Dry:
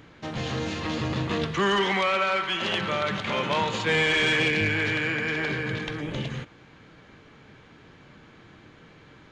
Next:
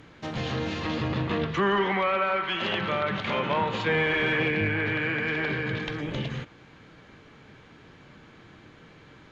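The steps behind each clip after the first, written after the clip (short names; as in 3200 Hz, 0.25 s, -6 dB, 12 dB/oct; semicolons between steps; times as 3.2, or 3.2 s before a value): treble ducked by the level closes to 2100 Hz, closed at -21.5 dBFS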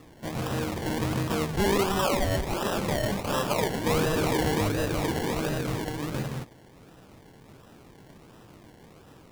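decimation with a swept rate 28×, swing 60% 1.4 Hz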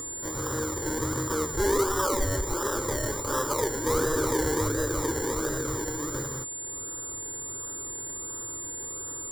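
upward compressor, threshold -38 dBFS; whine 7200 Hz -35 dBFS; fixed phaser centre 700 Hz, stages 6; gain +2 dB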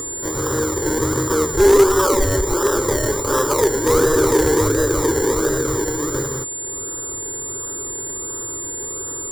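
one-sided fold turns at -19 dBFS; bell 400 Hz +7 dB 0.35 oct; short-mantissa float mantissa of 6-bit; gain +8 dB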